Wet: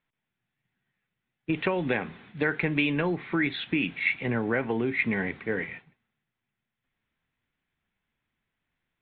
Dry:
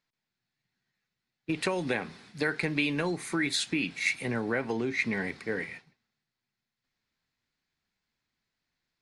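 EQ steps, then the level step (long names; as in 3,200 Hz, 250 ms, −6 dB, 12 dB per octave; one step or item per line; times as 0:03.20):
Butterworth low-pass 3,500 Hz 72 dB per octave
low-shelf EQ 150 Hz +3.5 dB
+2.5 dB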